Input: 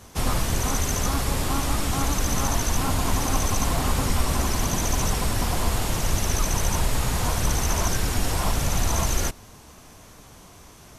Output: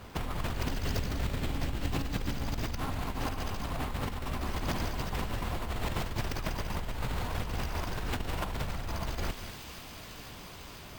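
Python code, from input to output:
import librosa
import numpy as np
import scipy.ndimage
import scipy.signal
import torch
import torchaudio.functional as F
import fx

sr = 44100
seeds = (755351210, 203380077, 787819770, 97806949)

y = fx.peak_eq(x, sr, hz=1400.0, db=-14.5, octaves=2.0, at=(0.65, 2.77))
y = np.repeat(y[::4], 4)[:len(y)]
y = fx.peak_eq(y, sr, hz=5800.0, db=-9.5, octaves=0.91)
y = fx.echo_wet_highpass(y, sr, ms=501, feedback_pct=82, hz=2500.0, wet_db=-16.0)
y = fx.over_compress(y, sr, threshold_db=-28.0, ratio=-1.0)
y = y + 10.0 ** (-11.0 / 20.0) * np.pad(y, (int(196 * sr / 1000.0), 0))[:len(y)]
y = fx.doppler_dist(y, sr, depth_ms=0.25)
y = y * 10.0 ** (-5.0 / 20.0)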